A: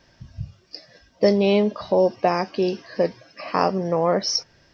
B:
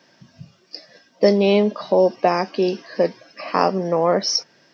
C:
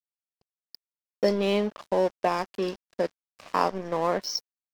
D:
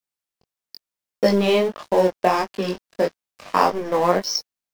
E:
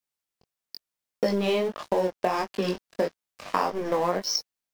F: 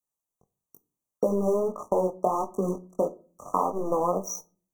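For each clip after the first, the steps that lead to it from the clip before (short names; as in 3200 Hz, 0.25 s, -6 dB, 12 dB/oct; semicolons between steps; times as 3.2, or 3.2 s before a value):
HPF 170 Hz 24 dB/oct; gain +2.5 dB
thirty-one-band EQ 1000 Hz +6 dB, 1600 Hz +3 dB, 3150 Hz +4 dB; crossover distortion -28.5 dBFS; gain -7.5 dB
chorus 1.6 Hz, delay 18.5 ms, depth 4.2 ms; in parallel at -8 dB: short-mantissa float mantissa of 2-bit; on the sum: gain +7 dB
compressor 4:1, threshold -22 dBFS, peak gain reduction 9.5 dB
brick-wall FIR band-stop 1300–5700 Hz; reverb RT60 0.40 s, pre-delay 7 ms, DRR 13.5 dB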